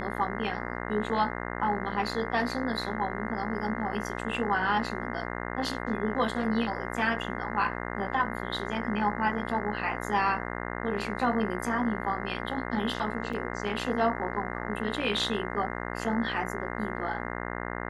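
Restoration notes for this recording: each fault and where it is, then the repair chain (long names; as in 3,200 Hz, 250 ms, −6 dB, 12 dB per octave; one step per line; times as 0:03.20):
mains buzz 60 Hz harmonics 35 −35 dBFS
0:13.33: drop-out 4.9 ms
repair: hum removal 60 Hz, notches 35
repair the gap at 0:13.33, 4.9 ms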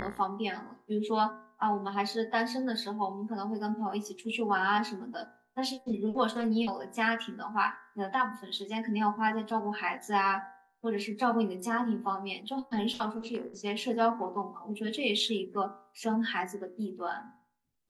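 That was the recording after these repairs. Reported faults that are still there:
none of them is left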